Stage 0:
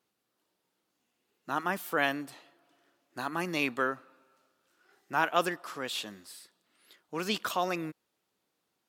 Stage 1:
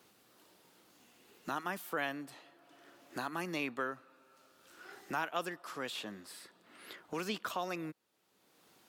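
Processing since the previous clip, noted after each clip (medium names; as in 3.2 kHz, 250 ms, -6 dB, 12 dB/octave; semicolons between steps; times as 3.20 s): three bands compressed up and down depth 70%; trim -6 dB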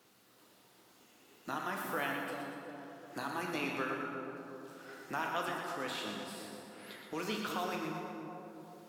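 on a send: two-band feedback delay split 910 Hz, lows 361 ms, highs 120 ms, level -6.5 dB; on the sum: plate-style reverb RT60 2.4 s, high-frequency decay 0.55×, DRR 1 dB; trim -2 dB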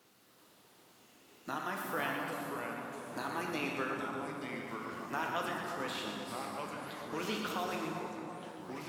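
ever faster or slower copies 214 ms, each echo -3 st, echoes 3, each echo -6 dB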